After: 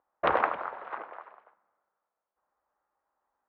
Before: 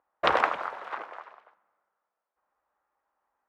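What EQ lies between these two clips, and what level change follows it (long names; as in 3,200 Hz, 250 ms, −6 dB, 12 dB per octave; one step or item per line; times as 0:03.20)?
low-pass filter 3,500 Hz 12 dB per octave
high-frequency loss of the air 100 metres
high-shelf EQ 2,600 Hz −9 dB
0.0 dB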